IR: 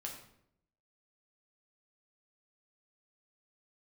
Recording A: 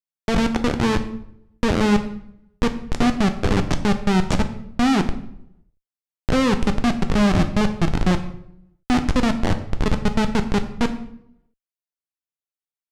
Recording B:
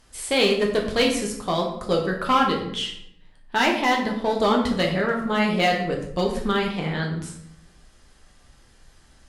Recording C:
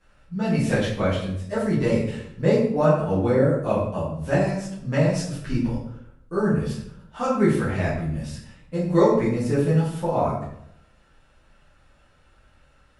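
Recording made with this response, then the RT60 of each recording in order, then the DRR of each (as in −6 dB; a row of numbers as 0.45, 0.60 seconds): B; 0.75, 0.75, 0.75 seconds; 7.0, −0.5, −10.5 decibels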